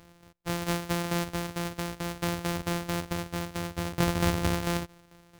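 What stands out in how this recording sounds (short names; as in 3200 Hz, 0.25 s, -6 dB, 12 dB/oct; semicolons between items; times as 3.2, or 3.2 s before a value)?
a buzz of ramps at a fixed pitch in blocks of 256 samples; tremolo saw down 4.5 Hz, depth 60%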